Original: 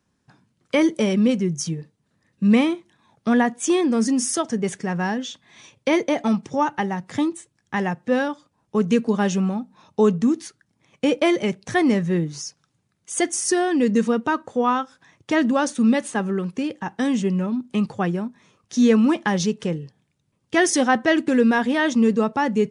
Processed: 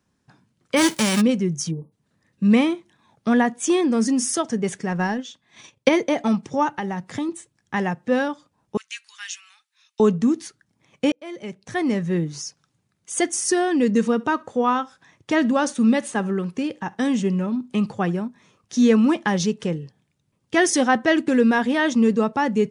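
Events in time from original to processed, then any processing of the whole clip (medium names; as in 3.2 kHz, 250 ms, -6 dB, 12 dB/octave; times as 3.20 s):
0.76–1.20 s: formants flattened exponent 0.3
1.71–1.92 s: spectral selection erased 1.2–9.5 kHz
4.91–5.89 s: transient shaper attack +7 dB, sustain -8 dB
6.76–7.29 s: compression, threshold -22 dBFS
8.77–10.00 s: inverse Chebyshev high-pass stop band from 550 Hz, stop band 60 dB
11.12–12.28 s: fade in
13.94–18.22 s: feedback delay 68 ms, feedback 21%, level -24 dB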